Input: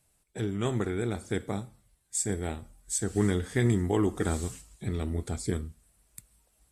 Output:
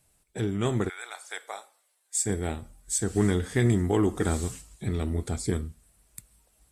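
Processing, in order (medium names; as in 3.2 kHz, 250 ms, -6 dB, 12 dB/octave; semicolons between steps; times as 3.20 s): 0.88–2.25 s: high-pass 960 Hz -> 430 Hz 24 dB/octave; in parallel at -7.5 dB: saturation -22 dBFS, distortion -13 dB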